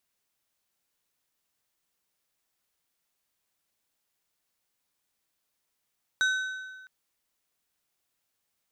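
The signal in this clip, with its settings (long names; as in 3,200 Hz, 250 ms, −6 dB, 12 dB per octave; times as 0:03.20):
struck metal plate, length 0.66 s, lowest mode 1,520 Hz, decay 1.48 s, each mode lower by 7.5 dB, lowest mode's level −21 dB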